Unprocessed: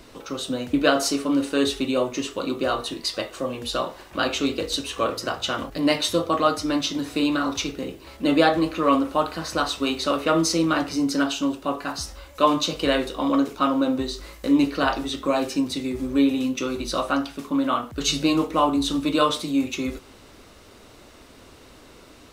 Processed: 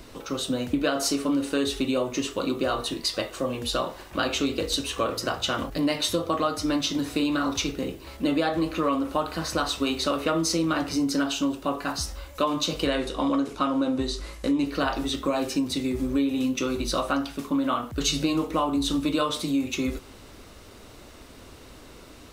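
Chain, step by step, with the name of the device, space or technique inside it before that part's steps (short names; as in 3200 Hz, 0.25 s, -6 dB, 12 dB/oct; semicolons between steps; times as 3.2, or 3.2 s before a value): 12.87–14.66 LPF 11000 Hz 24 dB/oct; ASMR close-microphone chain (low shelf 140 Hz +5 dB; compressor 6:1, threshold -21 dBFS, peak gain reduction 9 dB; high shelf 10000 Hz +4 dB)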